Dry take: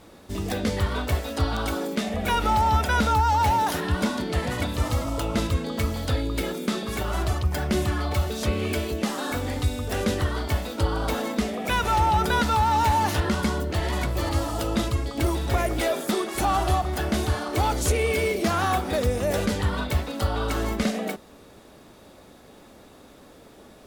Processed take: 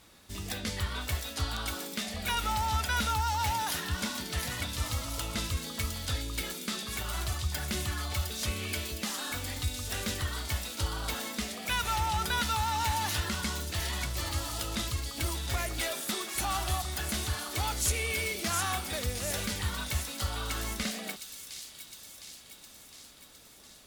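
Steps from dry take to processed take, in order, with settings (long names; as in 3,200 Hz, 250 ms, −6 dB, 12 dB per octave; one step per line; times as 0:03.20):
guitar amp tone stack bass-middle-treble 5-5-5
on a send: delay with a high-pass on its return 710 ms, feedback 61%, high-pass 4,200 Hz, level −4 dB
on the sum: level +5.5 dB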